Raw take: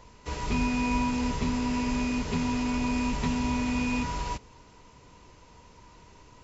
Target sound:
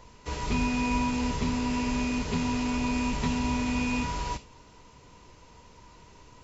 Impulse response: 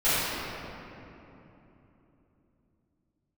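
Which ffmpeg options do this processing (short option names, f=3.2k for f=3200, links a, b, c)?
-filter_complex "[0:a]asplit=2[a][b];[b]highshelf=f=2.2k:t=q:w=1.5:g=9.5[c];[1:a]atrim=start_sample=2205,atrim=end_sample=3528[d];[c][d]afir=irnorm=-1:irlink=0,volume=-29dB[e];[a][e]amix=inputs=2:normalize=0"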